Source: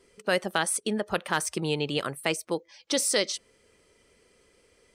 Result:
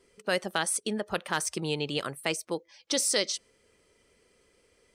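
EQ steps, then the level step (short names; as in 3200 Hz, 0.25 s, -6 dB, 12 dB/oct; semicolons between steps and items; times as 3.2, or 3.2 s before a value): dynamic EQ 5800 Hz, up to +4 dB, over -42 dBFS, Q 0.9; -3.0 dB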